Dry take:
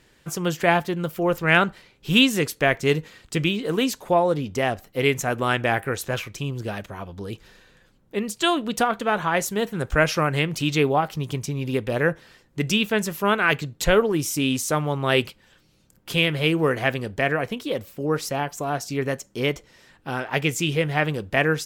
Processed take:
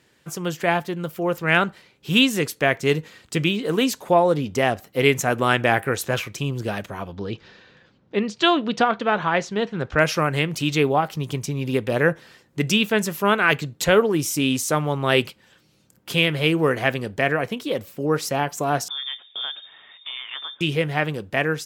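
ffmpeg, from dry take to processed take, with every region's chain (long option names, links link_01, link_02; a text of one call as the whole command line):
ffmpeg -i in.wav -filter_complex "[0:a]asettb=1/sr,asplit=3[link_01][link_02][link_03];[link_01]atrim=end=7.124[link_04];[link_02]atrim=start=7.12:end=10,asetpts=PTS-STARTPTS,afade=type=in:duration=0.004:curve=qsin,afade=type=out:start_time=2.876:duration=0.004:curve=qsin,lowpass=frequency=5200:width=0.5412,lowpass=frequency=5200:width=1.3066,asoftclip=type=hard:threshold=-7.5dB[link_05];[link_03]atrim=start=9.996[link_06];[link_04][link_05]acrossfade=duration=0.004:curve1=hsin:curve2=qsin[link_07];[link_07][link_06]acrossfade=duration=0.004:curve1=qsin:curve2=hsin,asettb=1/sr,asplit=3[link_08][link_09][link_10];[link_08]atrim=end=18.884[link_11];[link_09]atrim=start=18.88:end=20.61,asetpts=PTS-STARTPTS,afade=type=in:duration=0.004:curve=qsin,afade=type=out:start_time=1.726:duration=0.004:curve=qsin,lowshelf=frequency=120:gain=10.5,acompressor=threshold=-34dB:ratio=4:attack=3.2:release=140:knee=1:detection=peak,lowpass=frequency=3100:width_type=q:width=0.5098,lowpass=frequency=3100:width_type=q:width=0.6013,lowpass=frequency=3100:width_type=q:width=0.9,lowpass=frequency=3100:width_type=q:width=2.563,afreqshift=-3700[link_12];[link_10]atrim=start=20.606[link_13];[link_11][link_12]acrossfade=duration=0.004:curve1=hsin:curve2=qsin[link_14];[link_14][link_13]acrossfade=duration=0.004:curve1=qsin:curve2=hsin,highpass=93,dynaudnorm=framelen=570:gausssize=5:maxgain=11.5dB,volume=-2dB" out.wav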